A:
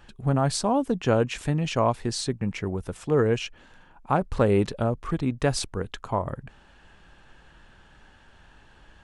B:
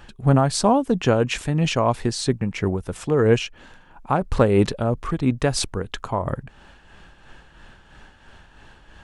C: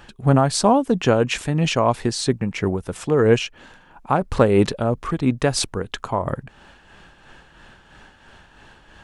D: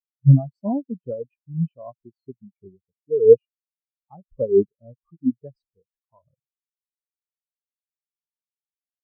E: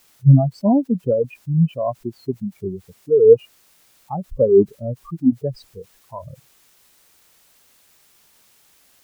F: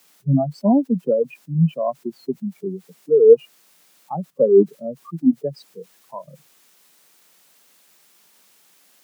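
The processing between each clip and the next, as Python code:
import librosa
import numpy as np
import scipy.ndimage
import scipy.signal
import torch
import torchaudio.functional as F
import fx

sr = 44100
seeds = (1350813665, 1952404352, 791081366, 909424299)

y1 = x * (1.0 - 0.5 / 2.0 + 0.5 / 2.0 * np.cos(2.0 * np.pi * 3.0 * (np.arange(len(x)) / sr)))
y1 = y1 * 10.0 ** (7.5 / 20.0)
y2 = fx.low_shelf(y1, sr, hz=80.0, db=-7.5)
y2 = y2 * 10.0 ** (2.0 / 20.0)
y3 = fx.spectral_expand(y2, sr, expansion=4.0)
y4 = fx.env_flatten(y3, sr, amount_pct=50)
y5 = scipy.signal.sosfilt(scipy.signal.butter(12, 150.0, 'highpass', fs=sr, output='sos'), y4)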